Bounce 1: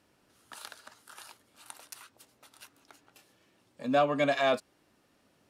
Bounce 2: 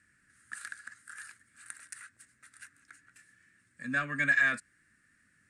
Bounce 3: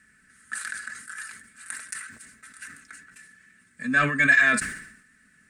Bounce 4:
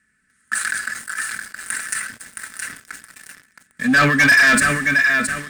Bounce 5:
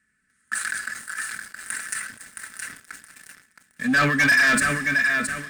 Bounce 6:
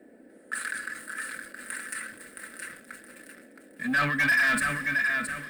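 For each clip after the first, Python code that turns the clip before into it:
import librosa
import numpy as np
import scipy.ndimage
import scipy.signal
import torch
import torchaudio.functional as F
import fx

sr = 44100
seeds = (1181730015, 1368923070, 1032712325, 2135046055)

y1 = fx.curve_eq(x, sr, hz=(100.0, 230.0, 440.0, 870.0, 1700.0, 3100.0, 5800.0, 8700.0, 13000.0), db=(0, -4, -17, -23, 13, -11, -5, 8, -18))
y2 = y1 + 0.6 * np.pad(y1, (int(4.6 * sr / 1000.0), 0))[:len(y1)]
y2 = fx.sustainer(y2, sr, db_per_s=75.0)
y2 = y2 * 10.0 ** (7.0 / 20.0)
y3 = fx.echo_feedback(y2, sr, ms=669, feedback_pct=32, wet_db=-8.0)
y3 = fx.leveller(y3, sr, passes=3)
y4 = y3 + 10.0 ** (-19.5 / 20.0) * np.pad(y3, (int(473 * sr / 1000.0), 0))[:len(y3)]
y4 = y4 * 10.0 ** (-5.0 / 20.0)
y5 = fx.law_mismatch(y4, sr, coded='mu')
y5 = fx.dmg_noise_band(y5, sr, seeds[0], low_hz=220.0, high_hz=540.0, level_db=-43.0)
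y5 = fx.graphic_eq_15(y5, sr, hz=(100, 400, 6300), db=(-7, -11, -11))
y5 = y5 * 10.0 ** (-5.0 / 20.0)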